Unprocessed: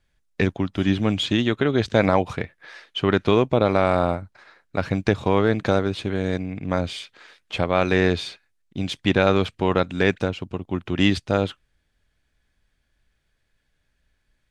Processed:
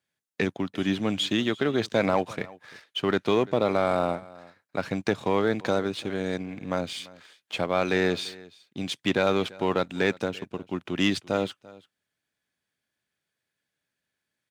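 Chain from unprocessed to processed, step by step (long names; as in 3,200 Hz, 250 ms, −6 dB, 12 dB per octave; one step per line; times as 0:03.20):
Bessel high-pass filter 170 Hz, order 4
high-shelf EQ 7,900 Hz +8.5 dB
leveller curve on the samples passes 1
single-tap delay 341 ms −21.5 dB
level −7 dB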